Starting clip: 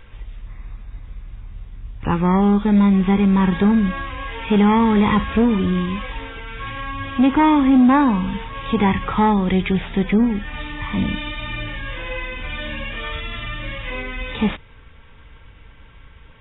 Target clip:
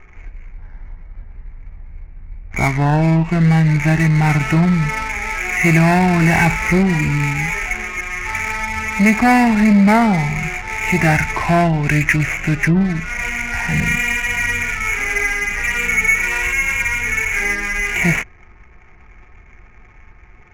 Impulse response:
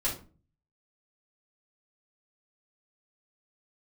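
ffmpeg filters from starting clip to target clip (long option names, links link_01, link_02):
-af "lowpass=frequency=2800:width_type=q:width=11,asetrate=35236,aresample=44100,adynamicsmooth=sensitivity=3.5:basefreq=860,volume=1dB"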